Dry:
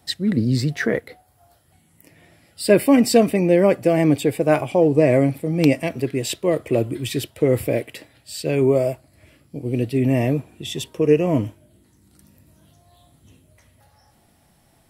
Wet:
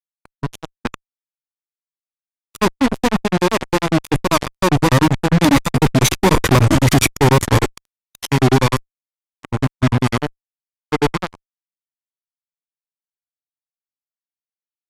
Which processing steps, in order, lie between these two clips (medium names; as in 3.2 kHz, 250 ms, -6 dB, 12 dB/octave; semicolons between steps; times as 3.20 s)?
comb filter that takes the minimum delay 0.69 ms; Doppler pass-by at 6.54 s, 11 m/s, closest 3.8 m; granulator 100 ms, grains 10 per s, spray 28 ms, pitch spread up and down by 0 st; fuzz box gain 49 dB, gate -43 dBFS; formant shift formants -4 st; resampled via 32 kHz; warped record 78 rpm, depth 160 cents; trim +4.5 dB